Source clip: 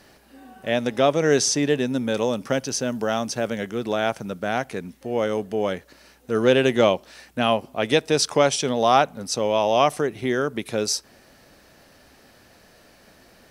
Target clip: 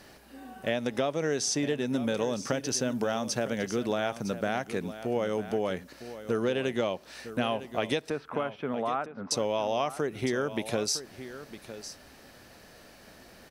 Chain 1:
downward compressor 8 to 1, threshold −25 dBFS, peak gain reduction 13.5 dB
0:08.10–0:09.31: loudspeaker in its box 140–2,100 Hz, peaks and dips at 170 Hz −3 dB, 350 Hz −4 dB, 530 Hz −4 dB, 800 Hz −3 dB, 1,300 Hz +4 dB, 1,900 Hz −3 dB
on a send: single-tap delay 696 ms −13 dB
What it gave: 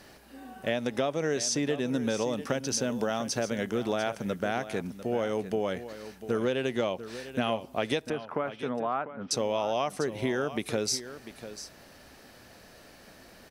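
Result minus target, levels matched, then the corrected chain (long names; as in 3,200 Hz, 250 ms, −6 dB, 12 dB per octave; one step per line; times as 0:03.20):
echo 262 ms early
downward compressor 8 to 1, threshold −25 dBFS, peak gain reduction 13.5 dB
0:08.10–0:09.31: loudspeaker in its box 140–2,100 Hz, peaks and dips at 170 Hz −3 dB, 350 Hz −4 dB, 530 Hz −4 dB, 800 Hz −3 dB, 1,300 Hz +4 dB, 1,900 Hz −3 dB
on a send: single-tap delay 958 ms −13 dB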